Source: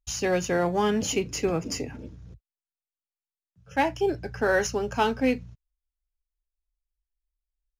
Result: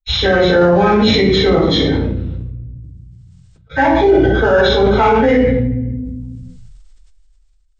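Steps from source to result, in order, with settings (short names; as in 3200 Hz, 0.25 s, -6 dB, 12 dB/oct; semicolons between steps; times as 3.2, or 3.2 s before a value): nonlinear frequency compression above 1400 Hz 1.5:1; gate with hold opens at -42 dBFS; reverb RT60 0.65 s, pre-delay 3 ms, DRR -12.5 dB; maximiser +4.5 dB; sustainer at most 20 dB/s; gain -3 dB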